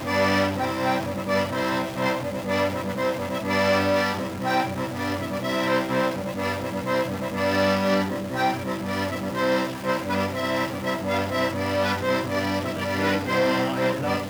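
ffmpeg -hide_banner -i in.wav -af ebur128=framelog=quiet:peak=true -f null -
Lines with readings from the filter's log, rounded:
Integrated loudness:
  I:         -24.5 LUFS
  Threshold: -34.5 LUFS
Loudness range:
  LRA:         1.4 LU
  Threshold: -44.7 LUFS
  LRA low:   -25.5 LUFS
  LRA high:  -24.2 LUFS
True peak:
  Peak:      -10.4 dBFS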